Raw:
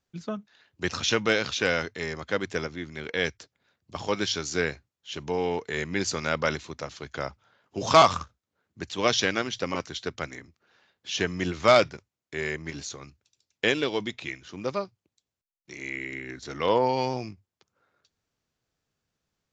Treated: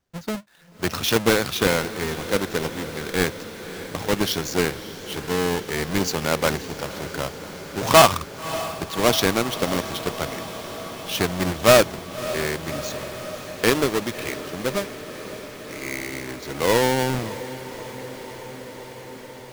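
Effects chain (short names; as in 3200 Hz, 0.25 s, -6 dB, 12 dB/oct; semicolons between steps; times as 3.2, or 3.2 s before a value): half-waves squared off; diffused feedback echo 0.591 s, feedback 79%, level -14 dB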